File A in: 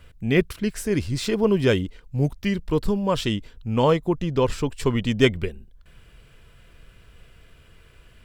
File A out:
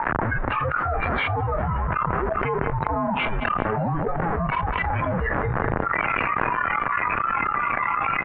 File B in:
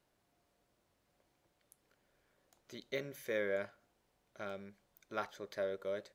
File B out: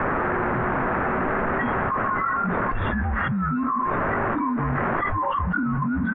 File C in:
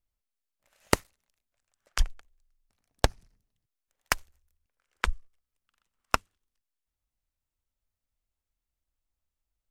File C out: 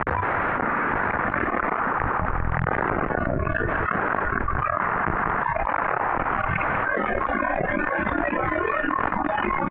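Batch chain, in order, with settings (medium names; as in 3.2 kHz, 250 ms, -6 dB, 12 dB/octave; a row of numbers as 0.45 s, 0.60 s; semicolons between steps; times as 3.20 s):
one-bit comparator; distance through air 400 m; in parallel at -11 dB: sample-rate reducer 1.2 kHz, jitter 0%; on the sum: spectral noise reduction 18 dB; band-stop 390 Hz, Q 13; reverse; upward compressor, threshold -46 dBFS; reverse; tilt shelf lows -9 dB, about 1.1 kHz; feedback delay 192 ms, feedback 42%, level -21.5 dB; mistuned SSB -340 Hz 330–2000 Hz; level flattener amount 100%; normalise loudness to -24 LUFS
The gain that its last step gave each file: +7.5 dB, +23.0 dB, +16.0 dB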